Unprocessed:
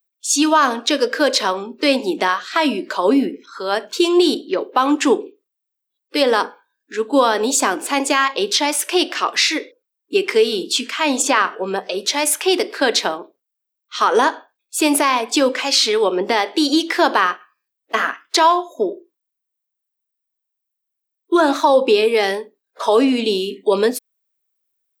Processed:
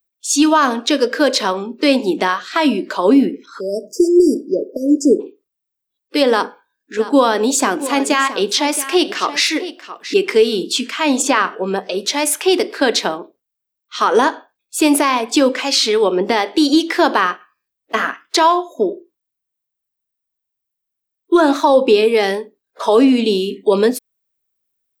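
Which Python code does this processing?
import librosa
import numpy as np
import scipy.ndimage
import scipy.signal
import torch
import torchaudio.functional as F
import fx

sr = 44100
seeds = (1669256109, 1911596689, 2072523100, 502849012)

y = fx.brickwall_bandstop(x, sr, low_hz=660.0, high_hz=4700.0, at=(3.59, 5.19), fade=0.02)
y = fx.echo_single(y, sr, ms=672, db=-13.5, at=(6.3, 10.14))
y = fx.low_shelf(y, sr, hz=220.0, db=11.5)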